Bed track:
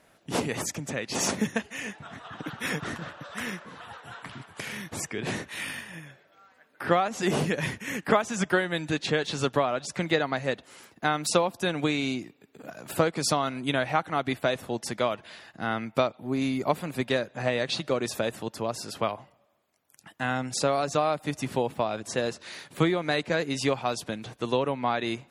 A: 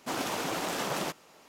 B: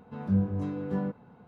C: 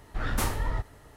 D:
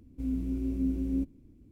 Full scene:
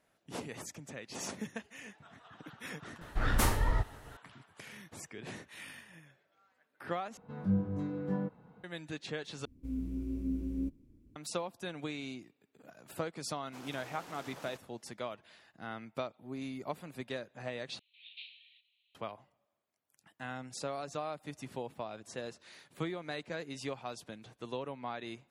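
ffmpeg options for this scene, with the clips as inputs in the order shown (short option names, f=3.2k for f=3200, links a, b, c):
-filter_complex "[3:a]asplit=2[a][b];[0:a]volume=-13.5dB[c];[2:a]aecho=1:1:6.3:0.35[d];[4:a]asuperstop=centerf=730:order=4:qfactor=7.6[e];[b]asuperpass=centerf=3100:order=12:qfactor=1.8[f];[c]asplit=4[g][h][i][j];[g]atrim=end=7.174[k];[d]atrim=end=1.47,asetpts=PTS-STARTPTS,volume=-5dB[l];[h]atrim=start=8.636:end=9.454[m];[e]atrim=end=1.71,asetpts=PTS-STARTPTS,volume=-5.5dB[n];[i]atrim=start=11.156:end=17.794[o];[f]atrim=end=1.16,asetpts=PTS-STARTPTS,volume=-5.5dB[p];[j]atrim=start=18.946[q];[a]atrim=end=1.16,asetpts=PTS-STARTPTS,afade=t=in:d=0.004:c=hsin,afade=t=out:st=1.156:d=0.004:c=hsin,adelay=3010[r];[1:a]atrim=end=1.48,asetpts=PTS-STARTPTS,volume=-18dB,afade=t=in:d=0.004:c=hsin,afade=t=out:st=1.476:d=0.004:c=hsin,adelay=13460[s];[k][l]acrossfade=d=0.004:c1=hsin:c2=hsin[t];[t][m]acrossfade=d=0.004:c1=hsin:c2=hsin[u];[u][n]acrossfade=d=0.004:c1=hsin:c2=hsin[v];[v][o]acrossfade=d=0.004:c1=hsin:c2=hsin[w];[w][p]acrossfade=d=0.004:c1=hsin:c2=hsin[x];[x][q]acrossfade=d=0.004:c1=hsin:c2=hsin[y];[y][r][s]amix=inputs=3:normalize=0"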